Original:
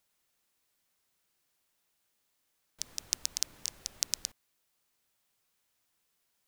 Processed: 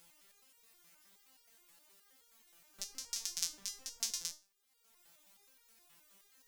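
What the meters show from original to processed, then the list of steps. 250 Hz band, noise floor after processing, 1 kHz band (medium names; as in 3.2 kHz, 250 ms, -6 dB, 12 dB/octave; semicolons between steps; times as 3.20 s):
-4.5 dB, -74 dBFS, -3.0 dB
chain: in parallel at -2 dB: upward compressor, threshold -36 dBFS; on the sum: resonator arpeggio 9.5 Hz 170–470 Hz; trim +4 dB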